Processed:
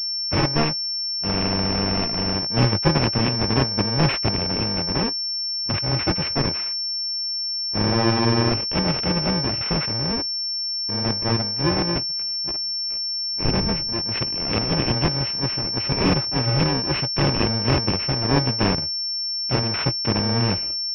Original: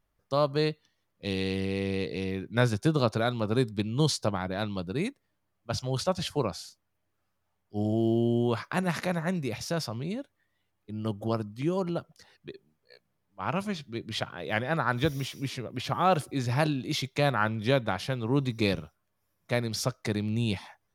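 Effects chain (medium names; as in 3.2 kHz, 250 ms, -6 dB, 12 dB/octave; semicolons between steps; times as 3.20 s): bit-reversed sample order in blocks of 64 samples; 13.44–13.97 s: wind noise 160 Hz -31 dBFS; class-D stage that switches slowly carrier 5.4 kHz; trim +7.5 dB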